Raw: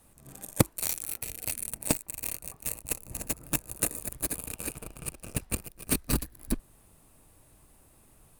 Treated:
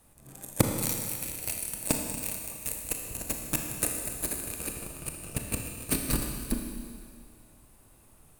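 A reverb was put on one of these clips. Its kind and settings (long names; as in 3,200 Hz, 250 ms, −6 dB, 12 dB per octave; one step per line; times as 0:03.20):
four-comb reverb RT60 2.1 s, combs from 26 ms, DRR 2.5 dB
level −1 dB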